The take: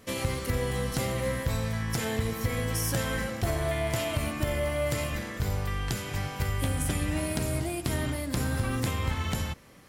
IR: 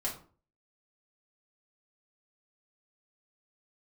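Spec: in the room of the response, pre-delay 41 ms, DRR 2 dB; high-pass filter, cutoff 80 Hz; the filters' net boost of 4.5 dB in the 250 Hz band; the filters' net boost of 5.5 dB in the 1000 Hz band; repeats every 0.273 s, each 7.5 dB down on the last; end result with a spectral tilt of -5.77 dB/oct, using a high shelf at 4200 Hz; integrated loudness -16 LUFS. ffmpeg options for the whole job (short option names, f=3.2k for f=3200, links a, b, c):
-filter_complex "[0:a]highpass=80,equalizer=f=250:t=o:g=5.5,equalizer=f=1k:t=o:g=7,highshelf=f=4.2k:g=-5,aecho=1:1:273|546|819|1092|1365:0.422|0.177|0.0744|0.0312|0.0131,asplit=2[a][b];[1:a]atrim=start_sample=2205,adelay=41[c];[b][c]afir=irnorm=-1:irlink=0,volume=-5.5dB[d];[a][d]amix=inputs=2:normalize=0,volume=10dB"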